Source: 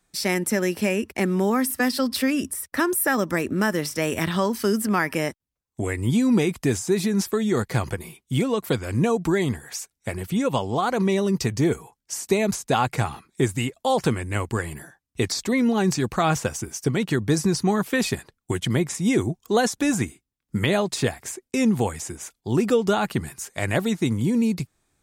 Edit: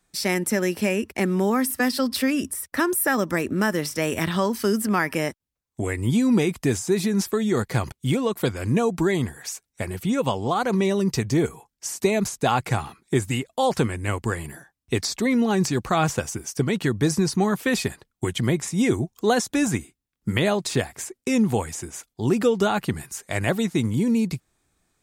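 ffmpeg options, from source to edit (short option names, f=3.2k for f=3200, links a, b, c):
-filter_complex "[0:a]asplit=2[a][b];[a]atrim=end=7.922[c];[b]atrim=start=8.188[d];[c][d]acrossfade=d=0.004:c1=hsin:c2=hsin"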